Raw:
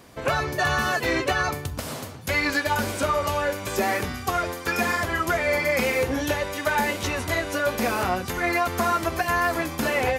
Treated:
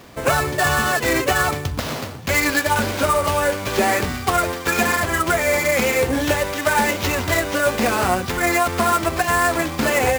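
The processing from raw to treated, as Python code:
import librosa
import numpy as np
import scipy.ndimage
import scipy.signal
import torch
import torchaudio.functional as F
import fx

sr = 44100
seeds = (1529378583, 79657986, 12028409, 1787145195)

p1 = fx.rider(x, sr, range_db=3, speed_s=0.5)
p2 = x + (p1 * 10.0 ** (-1.5 / 20.0))
y = fx.sample_hold(p2, sr, seeds[0], rate_hz=9400.0, jitter_pct=20)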